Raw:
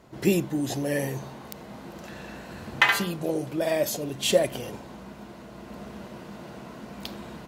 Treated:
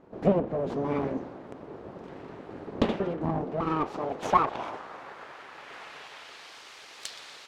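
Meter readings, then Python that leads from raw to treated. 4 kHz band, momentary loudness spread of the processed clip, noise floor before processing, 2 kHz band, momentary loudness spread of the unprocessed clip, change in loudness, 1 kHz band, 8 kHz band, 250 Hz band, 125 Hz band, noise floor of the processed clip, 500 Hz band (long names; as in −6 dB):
−11.5 dB, 19 LU, −44 dBFS, −13.0 dB, 19 LU, −3.5 dB, +5.0 dB, −14.0 dB, −2.0 dB, −2.0 dB, −48 dBFS, −3.0 dB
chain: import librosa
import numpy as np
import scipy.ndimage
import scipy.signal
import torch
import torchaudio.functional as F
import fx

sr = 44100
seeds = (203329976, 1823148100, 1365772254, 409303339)

y = fx.env_lowpass_down(x, sr, base_hz=1700.0, full_db=-19.0)
y = fx.echo_feedback(y, sr, ms=121, feedback_pct=56, wet_db=-20.0)
y = np.abs(y)
y = fx.filter_sweep_bandpass(y, sr, from_hz=300.0, to_hz=4300.0, start_s=3.36, end_s=6.61, q=0.92)
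y = y * librosa.db_to_amplitude(8.0)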